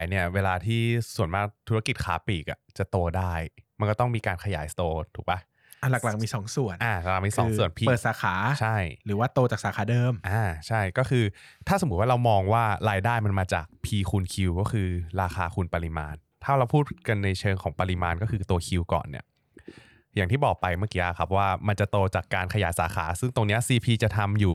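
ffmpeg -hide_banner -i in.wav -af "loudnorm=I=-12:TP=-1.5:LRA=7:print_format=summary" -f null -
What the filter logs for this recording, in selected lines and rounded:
Input Integrated:    -26.4 LUFS
Input True Peak:     -10.2 dBTP
Input LRA:             3.8 LU
Input Threshold:     -36.6 LUFS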